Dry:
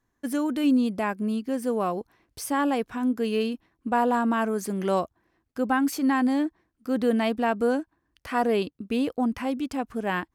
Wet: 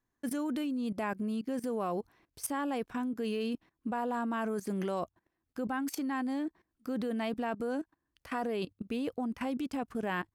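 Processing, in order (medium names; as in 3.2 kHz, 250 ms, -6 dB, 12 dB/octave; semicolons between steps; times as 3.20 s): hum notches 50/100 Hz; level held to a coarse grid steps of 17 dB; trim +1 dB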